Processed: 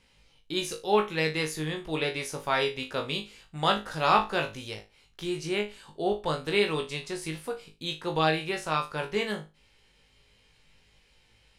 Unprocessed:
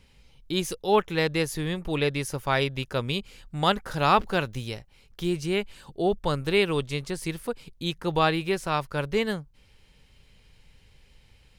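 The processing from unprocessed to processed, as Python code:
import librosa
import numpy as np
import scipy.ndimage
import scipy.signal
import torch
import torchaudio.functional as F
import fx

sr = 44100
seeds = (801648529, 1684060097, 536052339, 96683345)

p1 = scipy.signal.sosfilt(scipy.signal.butter(2, 11000.0, 'lowpass', fs=sr, output='sos'), x)
p2 = fx.low_shelf(p1, sr, hz=220.0, db=-9.5)
p3 = p2 + fx.room_flutter(p2, sr, wall_m=3.3, rt60_s=0.26, dry=0)
y = F.gain(torch.from_numpy(p3), -2.5).numpy()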